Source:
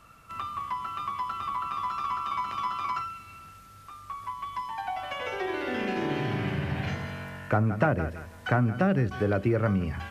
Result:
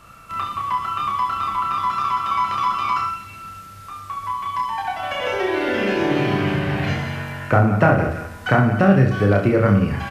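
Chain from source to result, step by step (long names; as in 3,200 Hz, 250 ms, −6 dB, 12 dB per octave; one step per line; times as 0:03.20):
reverse bouncing-ball delay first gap 30 ms, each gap 1.25×, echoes 5
level +7.5 dB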